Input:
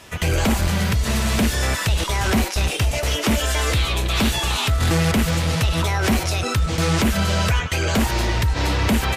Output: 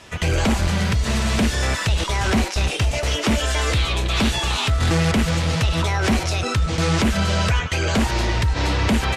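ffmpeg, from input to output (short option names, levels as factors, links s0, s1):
-af "lowpass=8200"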